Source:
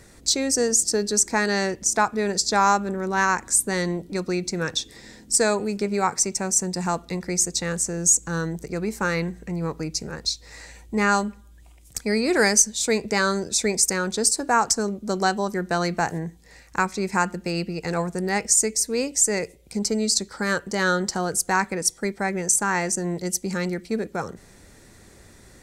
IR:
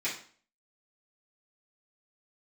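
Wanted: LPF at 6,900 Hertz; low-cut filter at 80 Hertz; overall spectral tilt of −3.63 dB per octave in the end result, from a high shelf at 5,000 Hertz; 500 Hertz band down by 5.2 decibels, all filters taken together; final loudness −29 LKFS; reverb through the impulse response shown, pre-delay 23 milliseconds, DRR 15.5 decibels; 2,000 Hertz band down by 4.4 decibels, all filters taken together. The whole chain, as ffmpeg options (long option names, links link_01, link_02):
-filter_complex "[0:a]highpass=80,lowpass=6900,equalizer=frequency=500:width_type=o:gain=-6.5,equalizer=frequency=2000:width_type=o:gain=-4.5,highshelf=frequency=5000:gain=-7,asplit=2[link_01][link_02];[1:a]atrim=start_sample=2205,adelay=23[link_03];[link_02][link_03]afir=irnorm=-1:irlink=0,volume=-22.5dB[link_04];[link_01][link_04]amix=inputs=2:normalize=0,volume=-1.5dB"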